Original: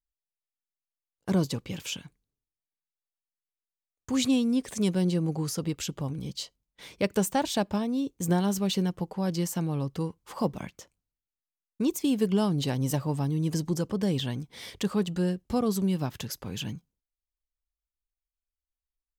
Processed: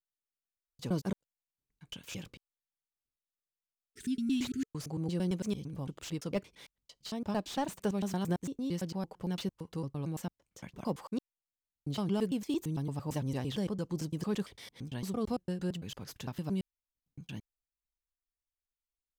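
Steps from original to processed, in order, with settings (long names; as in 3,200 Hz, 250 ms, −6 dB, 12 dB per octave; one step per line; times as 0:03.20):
slices reordered back to front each 113 ms, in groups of 7
healed spectral selection 0:03.77–0:04.63, 440–1,300 Hz
slew-rate limiting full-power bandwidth 100 Hz
level −7 dB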